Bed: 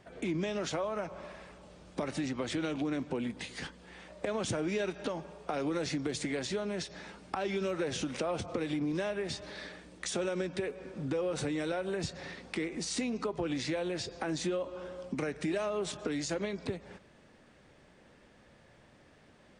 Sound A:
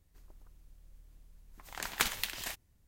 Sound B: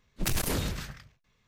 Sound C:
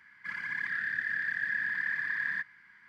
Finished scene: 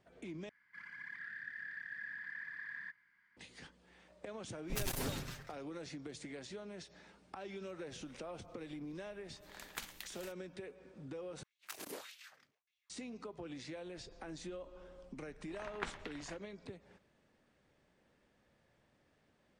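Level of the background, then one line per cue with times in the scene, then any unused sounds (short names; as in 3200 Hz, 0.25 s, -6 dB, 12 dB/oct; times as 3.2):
bed -13 dB
0.49 replace with C -14 dB
4.5 add B -7.5 dB + minimum comb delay 7.5 ms
7.77 add A -14.5 dB
11.43 replace with B -17 dB + LFO high-pass sine 1.7 Hz 270–3000 Hz
13.82 add A -6.5 dB + LPF 1800 Hz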